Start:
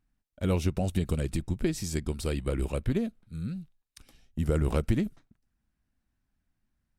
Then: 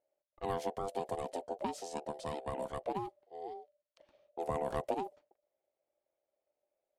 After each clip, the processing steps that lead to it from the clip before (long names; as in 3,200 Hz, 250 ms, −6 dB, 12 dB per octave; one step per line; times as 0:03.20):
low-pass that shuts in the quiet parts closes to 2,800 Hz, open at −24 dBFS
ring modulation 590 Hz
level −7 dB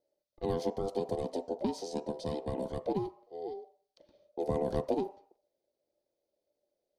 convolution reverb RT60 0.55 s, pre-delay 3 ms, DRR 11.5 dB
level −4.5 dB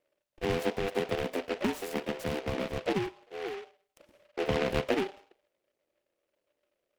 short delay modulated by noise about 1,800 Hz, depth 0.12 ms
level +2.5 dB